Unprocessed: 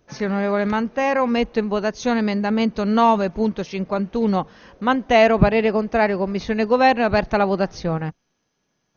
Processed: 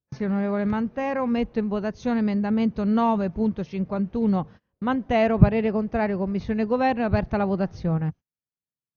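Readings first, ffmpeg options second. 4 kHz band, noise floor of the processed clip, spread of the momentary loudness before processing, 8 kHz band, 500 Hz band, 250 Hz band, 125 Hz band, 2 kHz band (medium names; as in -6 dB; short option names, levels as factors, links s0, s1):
-11.5 dB, under -85 dBFS, 9 LU, no reading, -6.5 dB, -1.5 dB, +1.5 dB, -9.0 dB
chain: -af "highshelf=f=5100:g=-11.5,agate=range=0.0398:threshold=0.0126:ratio=16:detection=peak,equalizer=f=99:t=o:w=2:g=14.5,volume=0.398"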